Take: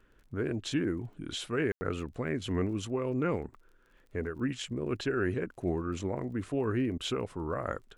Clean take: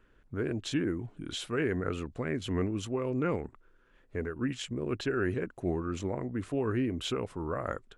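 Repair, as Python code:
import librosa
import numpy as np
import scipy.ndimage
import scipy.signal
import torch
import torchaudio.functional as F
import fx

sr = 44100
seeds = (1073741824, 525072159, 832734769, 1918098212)

y = fx.fix_declick_ar(x, sr, threshold=6.5)
y = fx.fix_ambience(y, sr, seeds[0], print_start_s=3.62, print_end_s=4.12, start_s=1.72, end_s=1.81)
y = fx.fix_interpolate(y, sr, at_s=(6.98,), length_ms=17.0)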